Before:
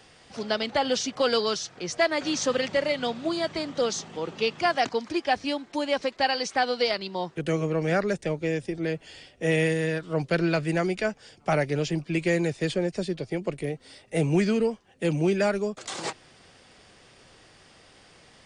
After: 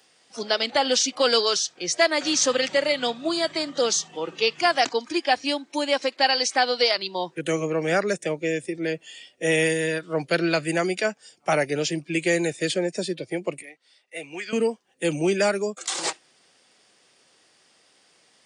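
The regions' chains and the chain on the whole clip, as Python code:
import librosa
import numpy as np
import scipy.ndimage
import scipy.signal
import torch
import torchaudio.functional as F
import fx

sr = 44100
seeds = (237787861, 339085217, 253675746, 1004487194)

y = fx.chain(x, sr, fx.bandpass_q(hz=3600.0, q=0.53),
    fx.high_shelf(hz=3500.0, db=-10.0), at=(13.62, 14.53))
y = scipy.signal.sosfilt(scipy.signal.butter(2, 220.0, 'highpass', fs=sr, output='sos'), y)
y = fx.noise_reduce_blind(y, sr, reduce_db=11)
y = fx.high_shelf(y, sr, hz=4300.0, db=10.0)
y = F.gain(torch.from_numpy(y), 2.5).numpy()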